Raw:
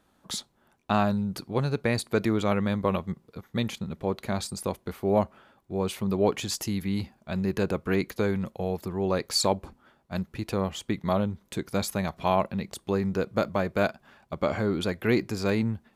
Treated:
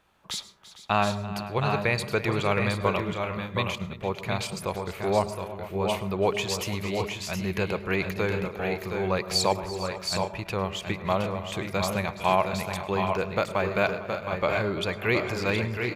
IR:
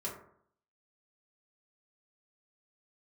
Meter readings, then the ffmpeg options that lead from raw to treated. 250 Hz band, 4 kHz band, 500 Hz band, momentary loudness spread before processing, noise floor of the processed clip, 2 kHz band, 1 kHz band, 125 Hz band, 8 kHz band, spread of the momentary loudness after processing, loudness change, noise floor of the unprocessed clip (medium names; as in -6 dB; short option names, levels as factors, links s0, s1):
-3.5 dB, +3.0 dB, +1.0 dB, 9 LU, -45 dBFS, +6.0 dB, +3.5 dB, 0.0 dB, 0.0 dB, 7 LU, +0.5 dB, -67 dBFS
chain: -filter_complex "[0:a]equalizer=f=250:t=o:w=0.67:g=-10,equalizer=f=1000:t=o:w=0.67:g=3,equalizer=f=2500:t=o:w=0.67:g=8,equalizer=f=10000:t=o:w=0.67:g=-4,aecho=1:1:336|453|718|751:0.141|0.158|0.501|0.266,asplit=2[s0][s1];[1:a]atrim=start_sample=2205,adelay=101[s2];[s1][s2]afir=irnorm=-1:irlink=0,volume=0.158[s3];[s0][s3]amix=inputs=2:normalize=0"